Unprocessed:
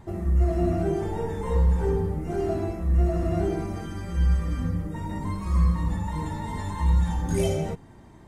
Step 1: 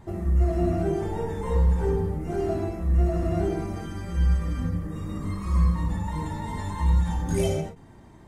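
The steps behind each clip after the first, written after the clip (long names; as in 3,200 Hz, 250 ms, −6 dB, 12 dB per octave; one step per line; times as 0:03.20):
healed spectral selection 0:04.80–0:05.48, 600–1,900 Hz both
every ending faded ahead of time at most 130 dB per second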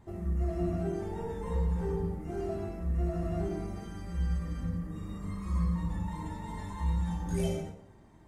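dense smooth reverb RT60 0.78 s, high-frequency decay 0.7×, DRR 5.5 dB
level −9 dB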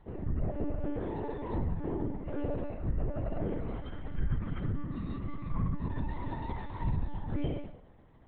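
treble cut that deepens with the level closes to 2,800 Hz, closed at −26.5 dBFS
one-pitch LPC vocoder at 8 kHz 290 Hz
speech leveller within 3 dB 0.5 s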